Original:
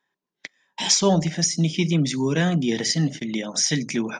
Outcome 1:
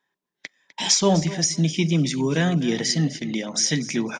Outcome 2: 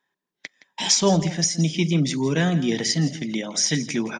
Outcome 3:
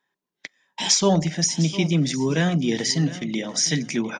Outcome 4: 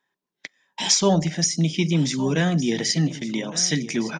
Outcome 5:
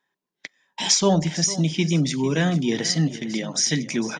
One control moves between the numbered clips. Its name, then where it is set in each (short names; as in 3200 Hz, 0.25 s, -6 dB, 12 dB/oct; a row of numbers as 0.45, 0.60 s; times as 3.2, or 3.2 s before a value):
feedback echo, time: 0.252, 0.167, 0.704, 1.161, 0.45 s